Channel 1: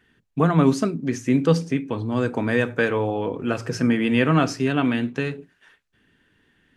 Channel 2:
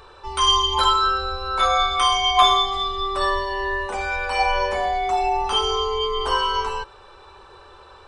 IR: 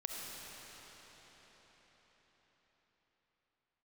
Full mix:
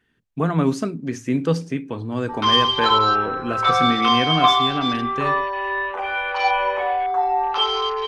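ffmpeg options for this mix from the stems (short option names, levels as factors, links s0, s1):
-filter_complex "[0:a]volume=0.501[s0];[1:a]afwtdn=0.0316,acrossover=split=390 5500:gain=0.126 1 0.0794[s1][s2][s3];[s1][s2][s3]amix=inputs=3:normalize=0,adelay=2050,volume=0.794[s4];[s0][s4]amix=inputs=2:normalize=0,dynaudnorm=f=120:g=5:m=1.58"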